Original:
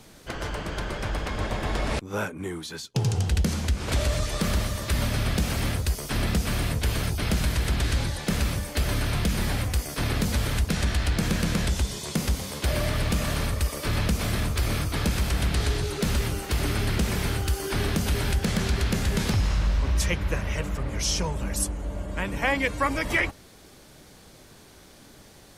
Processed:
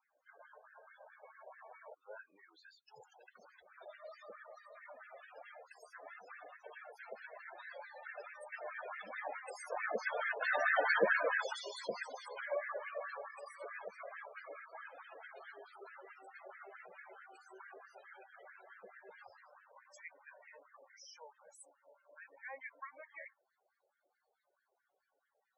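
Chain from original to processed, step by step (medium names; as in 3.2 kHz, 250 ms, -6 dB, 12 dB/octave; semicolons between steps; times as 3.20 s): Doppler pass-by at 10.86 s, 9 m/s, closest 3.1 m; LFO high-pass sine 4.6 Hz 530–1700 Hz; loudest bins only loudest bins 16; trim +4.5 dB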